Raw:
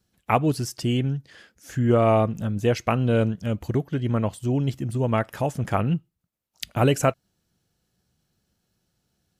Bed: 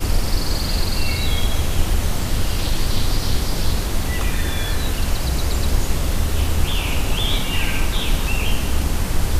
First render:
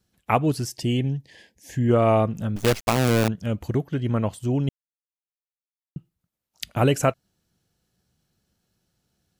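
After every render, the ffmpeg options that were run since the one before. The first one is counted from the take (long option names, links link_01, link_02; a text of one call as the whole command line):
ffmpeg -i in.wav -filter_complex "[0:a]asettb=1/sr,asplit=3[link_01][link_02][link_03];[link_01]atrim=end=0.674[link_04];[link_02]atrim=start=0.67:end=1.89,asetpts=PTS-STARTPTS,afade=type=in:duration=0.004:curve=qsin,afade=type=out:start_time=1.216:duration=0.004:curve=qsin,asuperstop=centerf=1300:order=8:qfactor=2.1[link_05];[link_03]atrim=start=1.886[link_06];[link_04][link_05]acrossfade=duration=0.004:curve1=hsin:curve2=qsin[link_07];[link_07][link_06]acrossfade=duration=0.004:curve1=qsin:curve2=hsin,asettb=1/sr,asplit=3[link_08][link_09][link_10];[link_08]atrim=end=2.564[link_11];[link_09]atrim=start=2.56:end=3.28,asetpts=PTS-STARTPTS,afade=type=in:duration=0.004:curve=qsin,afade=type=out:start_time=0.716:duration=0.004:curve=qsin,acrusher=bits=4:dc=4:mix=0:aa=0.000001[link_12];[link_10]atrim=start=3.276[link_13];[link_11][link_12]acrossfade=duration=0.004:curve1=hsin:curve2=qsin[link_14];[link_14][link_13]acrossfade=duration=0.004:curve1=qsin:curve2=hsin,asplit=3[link_15][link_16][link_17];[link_15]atrim=end=4.69,asetpts=PTS-STARTPTS,afade=type=out:start_time=4.686:duration=0.004:curve=hsin[link_18];[link_16]atrim=start=4.69:end=5.96,asetpts=PTS-STARTPTS,volume=0[link_19];[link_17]atrim=start=5.96,asetpts=PTS-STARTPTS,afade=type=in:duration=0.004:curve=hsin[link_20];[link_18][link_19][link_20]concat=n=3:v=0:a=1" out.wav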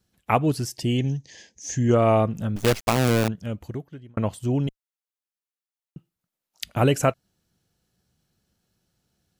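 ffmpeg -i in.wav -filter_complex "[0:a]asettb=1/sr,asplit=3[link_01][link_02][link_03];[link_01]atrim=end=0.984[link_04];[link_02]atrim=start=0.98:end=1.95,asetpts=PTS-STARTPTS,afade=type=in:duration=0.004:curve=qsin,afade=type=out:start_time=0.966:duration=0.004:curve=qsin,lowpass=frequency=6300:width_type=q:width=7.7[link_05];[link_03]atrim=start=1.946[link_06];[link_04][link_05]acrossfade=duration=0.004:curve1=hsin:curve2=qsin[link_07];[link_07][link_06]acrossfade=duration=0.004:curve1=qsin:curve2=hsin,asettb=1/sr,asplit=3[link_08][link_09][link_10];[link_08]atrim=end=4.674[link_11];[link_09]atrim=start=4.67:end=6.65,asetpts=PTS-STARTPTS,afade=type=in:duration=0.004:curve=qsin,afade=type=out:start_time=1.976:duration=0.004:curve=qsin,equalizer=frequency=62:width_type=o:width=2.7:gain=-14[link_12];[link_10]atrim=start=6.646[link_13];[link_11][link_12]acrossfade=duration=0.004:curve1=hsin:curve2=qsin[link_14];[link_14][link_13]acrossfade=duration=0.004:curve1=qsin:curve2=hsin,asplit=2[link_15][link_16];[link_15]atrim=end=4.17,asetpts=PTS-STARTPTS,afade=type=out:start_time=3.07:duration=1.1[link_17];[link_16]atrim=start=4.17,asetpts=PTS-STARTPTS,afade=type=in:duration=0.004:curve=hsin[link_18];[link_17][link_18]concat=n=2:v=0:a=1" out.wav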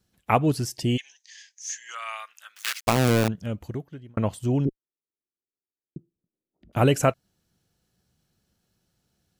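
ffmpeg -i in.wav -filter_complex "[0:a]asplit=3[link_01][link_02][link_03];[link_01]afade=type=out:start_time=0.96:duration=0.02[link_04];[link_02]highpass=frequency=1400:width=0.5412,highpass=frequency=1400:width=1.3066,afade=type=in:start_time=0.96:duration=0.02,afade=type=out:start_time=2.86:duration=0.02[link_05];[link_03]afade=type=in:start_time=2.86:duration=0.02[link_06];[link_04][link_05][link_06]amix=inputs=3:normalize=0,asettb=1/sr,asplit=3[link_07][link_08][link_09];[link_07]atrim=end=4.654[link_10];[link_08]atrim=start=4.65:end=6.73,asetpts=PTS-STARTPTS,afade=type=in:duration=0.004:curve=qsin,afade=type=out:start_time=2.076:duration=0.004:curve=qsin,lowpass=frequency=360:width_type=q:width=3[link_11];[link_09]atrim=start=6.726[link_12];[link_10][link_11]acrossfade=duration=0.004:curve1=hsin:curve2=qsin[link_13];[link_13][link_12]acrossfade=duration=0.004:curve1=qsin:curve2=hsin" out.wav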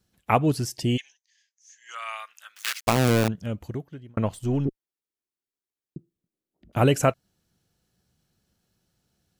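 ffmpeg -i in.wav -filter_complex "[0:a]asplit=3[link_01][link_02][link_03];[link_01]afade=type=out:start_time=4.25:duration=0.02[link_04];[link_02]aeval=exprs='if(lt(val(0),0),0.708*val(0),val(0))':channel_layout=same,afade=type=in:start_time=4.25:duration=0.02,afade=type=out:start_time=4.67:duration=0.02[link_05];[link_03]afade=type=in:start_time=4.67:duration=0.02[link_06];[link_04][link_05][link_06]amix=inputs=3:normalize=0,asplit=3[link_07][link_08][link_09];[link_07]atrim=end=1.21,asetpts=PTS-STARTPTS,afade=type=out:start_time=0.99:duration=0.22:silence=0.105925[link_10];[link_08]atrim=start=1.21:end=1.76,asetpts=PTS-STARTPTS,volume=-19.5dB[link_11];[link_09]atrim=start=1.76,asetpts=PTS-STARTPTS,afade=type=in:duration=0.22:silence=0.105925[link_12];[link_10][link_11][link_12]concat=n=3:v=0:a=1" out.wav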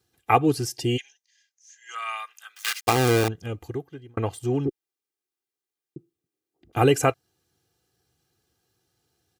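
ffmpeg -i in.wav -af "highpass=100,aecho=1:1:2.5:0.73" out.wav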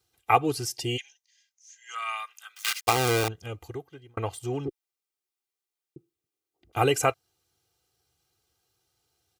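ffmpeg -i in.wav -af "equalizer=frequency=210:width=0.71:gain=-10,bandreject=frequency=1700:width=9.1" out.wav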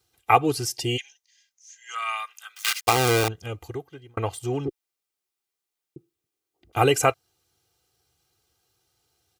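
ffmpeg -i in.wav -af "volume=3.5dB,alimiter=limit=-3dB:level=0:latency=1" out.wav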